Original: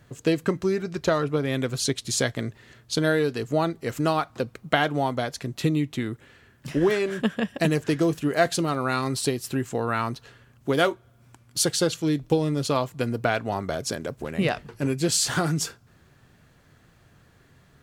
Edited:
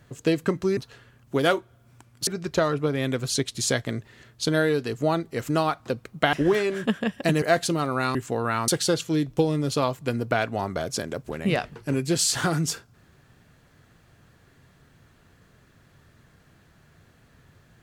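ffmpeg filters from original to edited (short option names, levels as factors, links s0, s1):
-filter_complex "[0:a]asplit=7[s0][s1][s2][s3][s4][s5][s6];[s0]atrim=end=0.772[s7];[s1]atrim=start=10.108:end=11.612[s8];[s2]atrim=start=0.768:end=4.832[s9];[s3]atrim=start=6.688:end=7.782[s10];[s4]atrim=start=8.308:end=9.042[s11];[s5]atrim=start=9.578:end=10.112[s12];[s6]atrim=start=11.608[s13];[s7][s8]acrossfade=d=0.004:c1=hsin:c2=hsin[s14];[s14][s9]acrossfade=d=0.004:c1=hsin:c2=hsin[s15];[s15][s10]acrossfade=d=0.004:c1=hsin:c2=hsin[s16];[s16][s11]acrossfade=d=0.004:c1=hsin:c2=hsin[s17];[s17][s12]acrossfade=d=0.004:c1=hsin:c2=hsin[s18];[s18][s13]acrossfade=d=0.004:c1=hsin:c2=hsin"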